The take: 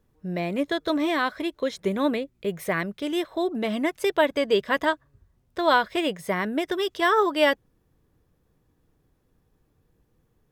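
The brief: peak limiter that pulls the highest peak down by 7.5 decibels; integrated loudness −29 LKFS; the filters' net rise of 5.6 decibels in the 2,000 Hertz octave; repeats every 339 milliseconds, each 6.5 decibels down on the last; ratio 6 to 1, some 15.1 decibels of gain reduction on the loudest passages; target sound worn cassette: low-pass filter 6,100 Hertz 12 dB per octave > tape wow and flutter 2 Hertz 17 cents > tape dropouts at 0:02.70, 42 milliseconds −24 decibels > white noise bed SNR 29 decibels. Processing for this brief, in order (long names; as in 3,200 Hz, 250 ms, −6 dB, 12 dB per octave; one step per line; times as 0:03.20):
parametric band 2,000 Hz +7 dB
downward compressor 6 to 1, threshold −30 dBFS
brickwall limiter −25.5 dBFS
low-pass filter 6,100 Hz 12 dB per octave
repeating echo 339 ms, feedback 47%, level −6.5 dB
tape wow and flutter 2 Hz 17 cents
tape dropouts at 0:02.70, 42 ms −24 dB
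white noise bed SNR 29 dB
level +6 dB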